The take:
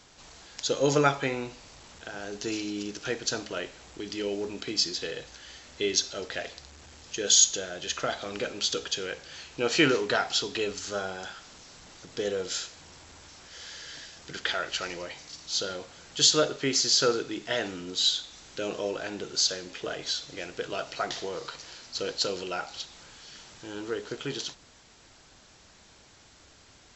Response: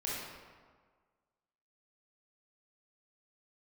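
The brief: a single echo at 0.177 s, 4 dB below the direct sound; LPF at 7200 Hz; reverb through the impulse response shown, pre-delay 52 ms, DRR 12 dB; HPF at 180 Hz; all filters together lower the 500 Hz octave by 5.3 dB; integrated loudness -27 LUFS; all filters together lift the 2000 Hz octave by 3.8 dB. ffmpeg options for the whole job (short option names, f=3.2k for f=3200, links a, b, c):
-filter_complex "[0:a]highpass=180,lowpass=7.2k,equalizer=f=500:t=o:g=-6.5,equalizer=f=2k:t=o:g=5.5,aecho=1:1:177:0.631,asplit=2[a][b];[1:a]atrim=start_sample=2205,adelay=52[c];[b][c]afir=irnorm=-1:irlink=0,volume=-16dB[d];[a][d]amix=inputs=2:normalize=0,volume=0.5dB"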